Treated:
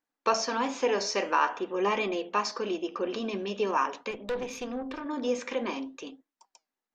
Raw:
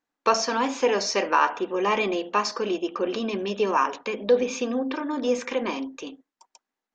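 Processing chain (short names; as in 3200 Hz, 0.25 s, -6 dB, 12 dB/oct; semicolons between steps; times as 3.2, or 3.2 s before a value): flange 0.48 Hz, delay 2.9 ms, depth 9.6 ms, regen +86%; 4.11–5.06 tube stage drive 27 dB, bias 0.65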